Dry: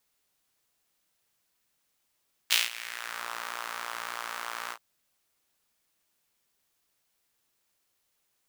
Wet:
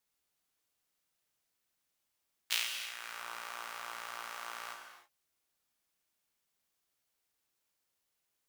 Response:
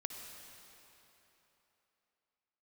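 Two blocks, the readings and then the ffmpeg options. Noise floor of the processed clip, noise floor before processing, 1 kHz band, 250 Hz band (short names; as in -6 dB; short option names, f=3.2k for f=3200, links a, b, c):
-83 dBFS, -76 dBFS, -6.5 dB, -8.0 dB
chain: -filter_complex "[1:a]atrim=start_sample=2205,afade=t=out:st=0.43:d=0.01,atrim=end_sample=19404,asetrate=52920,aresample=44100[a];[0:a][a]afir=irnorm=-1:irlink=0,volume=-3.5dB"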